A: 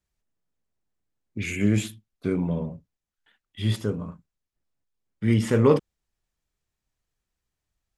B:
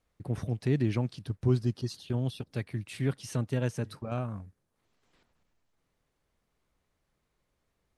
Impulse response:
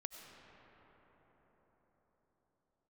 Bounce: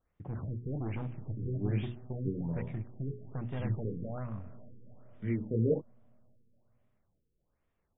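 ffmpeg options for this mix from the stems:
-filter_complex "[0:a]highpass=51,flanger=delay=20:depth=7.4:speed=1.7,volume=-8.5dB[link_01];[1:a]bandreject=frequency=60:width_type=h:width=6,bandreject=frequency=120:width_type=h:width=6,bandreject=frequency=180:width_type=h:width=6,bandreject=frequency=240:width_type=h:width=6,bandreject=frequency=300:width_type=h:width=6,bandreject=frequency=360:width_type=h:width=6,bandreject=frequency=420:width_type=h:width=6,asoftclip=type=hard:threshold=-31.5dB,volume=-5.5dB,asplit=2[link_02][link_03];[link_03]volume=-4.5dB[link_04];[2:a]atrim=start_sample=2205[link_05];[link_04][link_05]afir=irnorm=-1:irlink=0[link_06];[link_01][link_02][link_06]amix=inputs=3:normalize=0,bass=frequency=250:gain=2,treble=frequency=4000:gain=-9,afftfilt=real='re*lt(b*sr/1024,500*pow(3800/500,0.5+0.5*sin(2*PI*1.2*pts/sr)))':imag='im*lt(b*sr/1024,500*pow(3800/500,0.5+0.5*sin(2*PI*1.2*pts/sr)))':win_size=1024:overlap=0.75"

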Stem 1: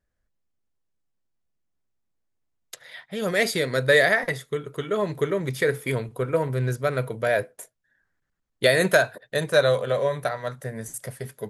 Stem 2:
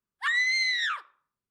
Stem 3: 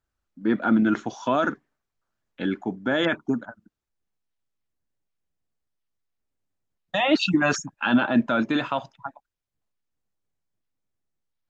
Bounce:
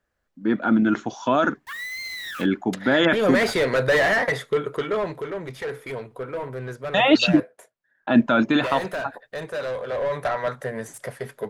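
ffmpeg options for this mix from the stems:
ffmpeg -i stem1.wav -i stem2.wav -i stem3.wav -filter_complex "[0:a]asplit=2[link_01][link_02];[link_02]highpass=frequency=720:poles=1,volume=26dB,asoftclip=type=tanh:threshold=-5.5dB[link_03];[link_01][link_03]amix=inputs=2:normalize=0,lowpass=frequency=1300:poles=1,volume=-6dB,volume=2.5dB,afade=type=out:start_time=4.63:duration=0.59:silence=0.316228,afade=type=in:start_time=9.85:duration=0.56:silence=0.298538[link_04];[1:a]highpass=480,acompressor=threshold=-32dB:ratio=4,acrusher=bits=6:mix=0:aa=0.000001,adelay=1450,volume=-3.5dB[link_05];[2:a]volume=0.5dB,asplit=3[link_06][link_07][link_08];[link_06]atrim=end=7.4,asetpts=PTS-STARTPTS,afade=type=out:start_time=7.396:duration=0.004:curve=hsin[link_09];[link_07]atrim=start=7.4:end=8.07,asetpts=PTS-STARTPTS,volume=0[link_10];[link_08]atrim=start=8.07,asetpts=PTS-STARTPTS,afade=type=in:duration=0.004:curve=hsin[link_11];[link_09][link_10][link_11]concat=n=3:v=0:a=1,asplit=2[link_12][link_13];[link_13]apad=whole_len=130200[link_14];[link_05][link_14]sidechaincompress=threshold=-27dB:ratio=8:attack=8.6:release=401[link_15];[link_04][link_15][link_12]amix=inputs=3:normalize=0,dynaudnorm=framelen=160:gausssize=17:maxgain=4dB" out.wav

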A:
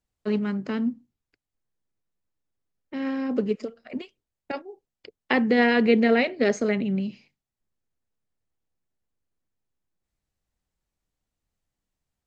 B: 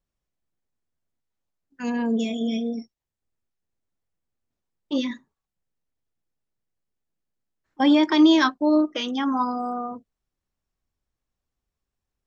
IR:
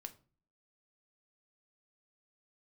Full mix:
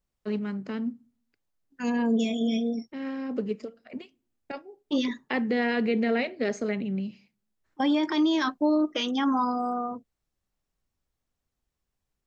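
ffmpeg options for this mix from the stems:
-filter_complex "[0:a]volume=1.5dB,asplit=2[link_01][link_02];[link_02]volume=-14dB[link_03];[1:a]volume=-0.5dB,asplit=2[link_04][link_05];[link_05]apad=whole_len=540847[link_06];[link_01][link_06]sidechaingate=range=-9dB:threshold=-35dB:ratio=16:detection=peak[link_07];[2:a]atrim=start_sample=2205[link_08];[link_03][link_08]afir=irnorm=-1:irlink=0[link_09];[link_07][link_04][link_09]amix=inputs=3:normalize=0,alimiter=limit=-17dB:level=0:latency=1:release=18"

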